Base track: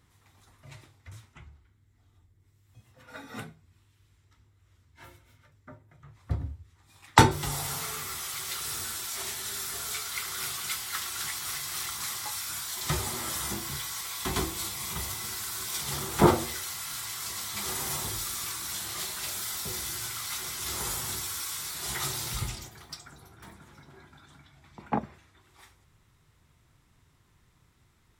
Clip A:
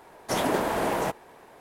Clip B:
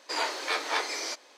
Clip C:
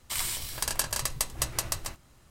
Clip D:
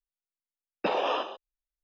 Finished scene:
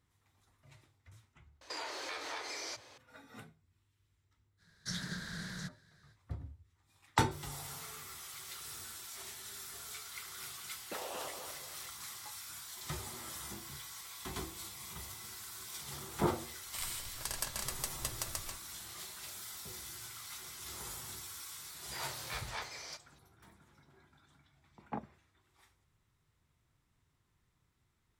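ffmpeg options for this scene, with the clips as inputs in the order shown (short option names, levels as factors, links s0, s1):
-filter_complex "[2:a]asplit=2[s0][s1];[0:a]volume=0.251[s2];[s0]acompressor=threshold=0.0141:ratio=6:attack=3.2:release=140:knee=1:detection=peak[s3];[1:a]firequalizer=gain_entry='entry(100,0);entry(170,9);entry(260,-17);entry(850,-26);entry(1600,4);entry(2600,-15);entry(3900,10);entry(5800,5);entry(9300,-4);entry(14000,-13)':delay=0.05:min_phase=1[s4];[4:a]asplit=2[s5][s6];[s6]adelay=229,lowpass=f=2000:p=1,volume=0.562,asplit=2[s7][s8];[s8]adelay=229,lowpass=f=2000:p=1,volume=0.41,asplit=2[s9][s10];[s10]adelay=229,lowpass=f=2000:p=1,volume=0.41,asplit=2[s11][s12];[s12]adelay=229,lowpass=f=2000:p=1,volume=0.41,asplit=2[s13][s14];[s14]adelay=229,lowpass=f=2000:p=1,volume=0.41[s15];[s5][s7][s9][s11][s13][s15]amix=inputs=6:normalize=0[s16];[s1]equalizer=f=350:w=2.2:g=-9[s17];[s3]atrim=end=1.37,asetpts=PTS-STARTPTS,volume=0.841,afade=t=in:d=0.004:c=hsin,afade=t=out:st=1.366:d=0.004:c=hsin,adelay=1610[s18];[s4]atrim=end=1.6,asetpts=PTS-STARTPTS,volume=0.299,afade=t=in:d=0.05,afade=t=out:st=1.55:d=0.05,adelay=201537S[s19];[s16]atrim=end=1.83,asetpts=PTS-STARTPTS,volume=0.15,afade=t=in:d=0.004:c=hsin,afade=t=out:st=1.826:d=0.004:c=hsin,adelay=10070[s20];[3:a]atrim=end=2.3,asetpts=PTS-STARTPTS,volume=0.335,afade=t=in:d=0.004:c=hsin,afade=t=out:st=2.296:d=0.004:c=hsin,adelay=16630[s21];[s17]atrim=end=1.37,asetpts=PTS-STARTPTS,volume=0.224,afade=t=in:d=0.004:c=hsin,afade=t=out:st=1.366:d=0.004:c=hsin,adelay=21820[s22];[s2][s18][s19][s20][s21][s22]amix=inputs=6:normalize=0"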